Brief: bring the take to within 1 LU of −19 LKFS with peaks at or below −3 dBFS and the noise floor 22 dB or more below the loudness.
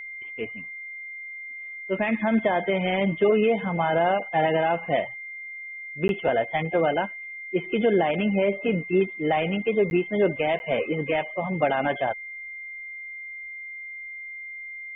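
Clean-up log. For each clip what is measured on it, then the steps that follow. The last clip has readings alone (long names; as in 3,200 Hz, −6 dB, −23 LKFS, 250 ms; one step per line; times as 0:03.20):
number of dropouts 3; longest dropout 11 ms; interfering tone 2,100 Hz; level of the tone −35 dBFS; integrated loudness −26.0 LKFS; sample peak −11.0 dBFS; target loudness −19.0 LKFS
→ repair the gap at 0:06.08/0:09.90/0:10.59, 11 ms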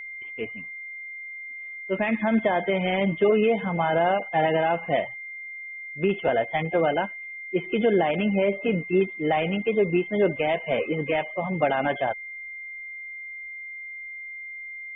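number of dropouts 0; interfering tone 2,100 Hz; level of the tone −35 dBFS
→ notch filter 2,100 Hz, Q 30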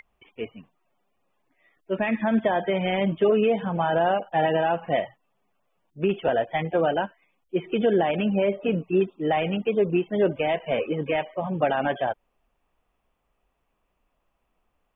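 interfering tone none found; integrated loudness −24.5 LKFS; sample peak −11.5 dBFS; target loudness −19.0 LKFS
→ level +5.5 dB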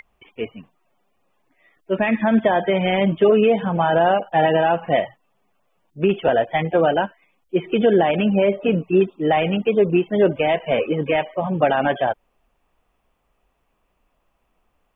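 integrated loudness −19.0 LKFS; sample peak −6.0 dBFS; background noise floor −69 dBFS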